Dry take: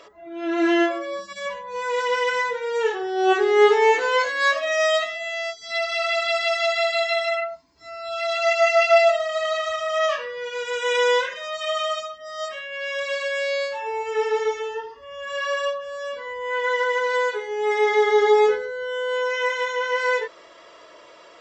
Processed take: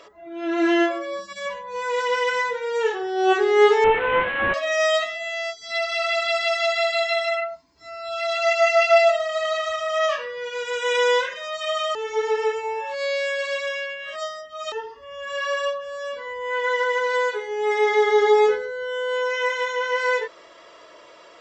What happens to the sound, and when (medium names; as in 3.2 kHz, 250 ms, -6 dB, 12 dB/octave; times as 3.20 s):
3.84–4.54 s: one-bit delta coder 16 kbps, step -23.5 dBFS
11.95–14.72 s: reverse